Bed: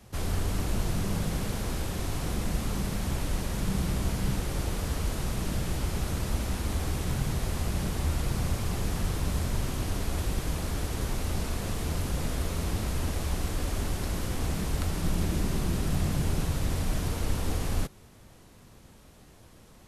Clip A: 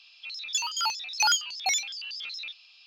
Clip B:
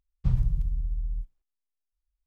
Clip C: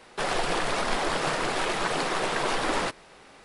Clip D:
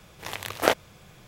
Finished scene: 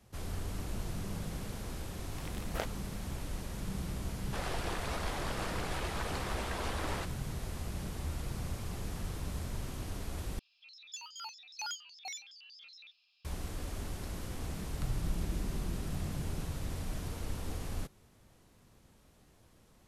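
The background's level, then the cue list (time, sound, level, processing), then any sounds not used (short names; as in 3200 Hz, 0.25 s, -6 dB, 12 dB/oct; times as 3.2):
bed -9.5 dB
1.92 add D -17 dB
4.15 add C -12 dB
10.39 replace with A -17 dB
14.57 add B -11.5 dB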